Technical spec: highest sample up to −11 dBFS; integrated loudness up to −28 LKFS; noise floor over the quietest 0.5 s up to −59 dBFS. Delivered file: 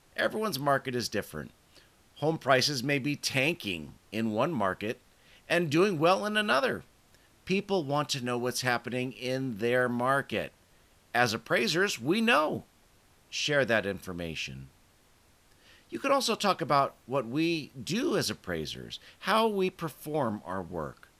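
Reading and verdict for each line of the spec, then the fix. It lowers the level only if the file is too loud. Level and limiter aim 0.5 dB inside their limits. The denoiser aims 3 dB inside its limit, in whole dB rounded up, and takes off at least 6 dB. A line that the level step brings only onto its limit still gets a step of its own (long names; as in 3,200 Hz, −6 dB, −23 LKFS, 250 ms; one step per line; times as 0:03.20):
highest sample −10.0 dBFS: out of spec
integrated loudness −29.5 LKFS: in spec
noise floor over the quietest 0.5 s −63 dBFS: in spec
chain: brickwall limiter −11.5 dBFS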